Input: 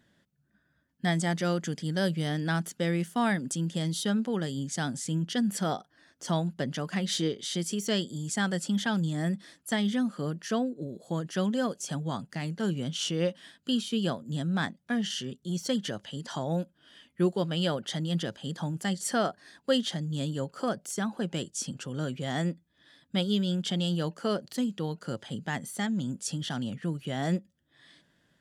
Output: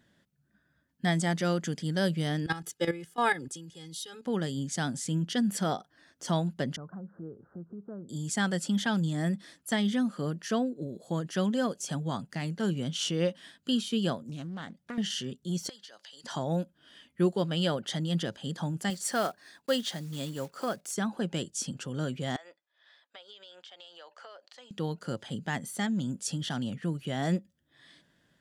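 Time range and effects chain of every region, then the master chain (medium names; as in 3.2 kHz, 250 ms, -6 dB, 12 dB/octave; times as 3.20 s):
2.46–4.26 s: comb 2.4 ms, depth 98% + level held to a coarse grid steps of 13 dB + three bands expanded up and down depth 70%
6.76–8.09 s: steep low-pass 1.5 kHz 96 dB/octave + peaking EQ 100 Hz +8 dB 1.2 oct + compression 2:1, threshold -50 dBFS
14.27–14.98 s: compression 12:1, threshold -35 dBFS + loudspeaker Doppler distortion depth 0.29 ms
15.69–16.24 s: high-pass 760 Hz + peaking EQ 4.6 kHz +10.5 dB 0.5 oct + compression 8:1, threshold -46 dBFS
18.90–20.96 s: block-companded coder 5-bit + bass shelf 320 Hz -7.5 dB + band-stop 3.1 kHz, Q 22
22.36–24.71 s: high-pass 610 Hz 24 dB/octave + compression 8:1, threshold -44 dBFS + distance through air 120 m
whole clip: none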